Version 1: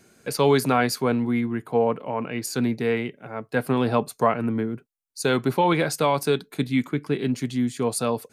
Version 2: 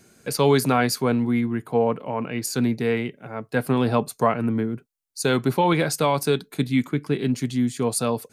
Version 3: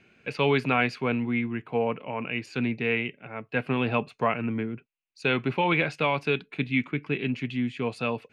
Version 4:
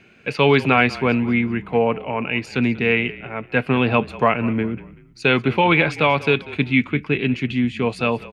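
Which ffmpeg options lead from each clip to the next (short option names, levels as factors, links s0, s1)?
-af "bass=f=250:g=3,treble=f=4000:g=3"
-af "lowpass=f=2600:t=q:w=5.4,volume=0.501"
-filter_complex "[0:a]asplit=4[s0][s1][s2][s3];[s1]adelay=191,afreqshift=-34,volume=0.119[s4];[s2]adelay=382,afreqshift=-68,volume=0.0462[s5];[s3]adelay=573,afreqshift=-102,volume=0.018[s6];[s0][s4][s5][s6]amix=inputs=4:normalize=0,volume=2.51"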